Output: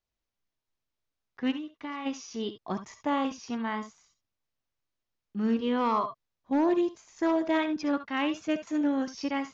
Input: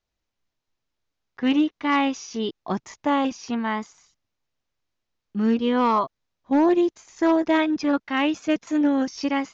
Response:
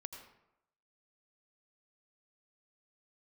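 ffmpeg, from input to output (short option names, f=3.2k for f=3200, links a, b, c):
-filter_complex "[0:a]asplit=3[a][b][c];[a]afade=t=out:st=1.5:d=0.02[d];[b]acompressor=threshold=-29dB:ratio=6,afade=t=in:st=1.5:d=0.02,afade=t=out:st=2.05:d=0.02[e];[c]afade=t=in:st=2.05:d=0.02[f];[d][e][f]amix=inputs=3:normalize=0[g];[1:a]atrim=start_sample=2205,atrim=end_sample=3969,asetrate=52920,aresample=44100[h];[g][h]afir=irnorm=-1:irlink=0"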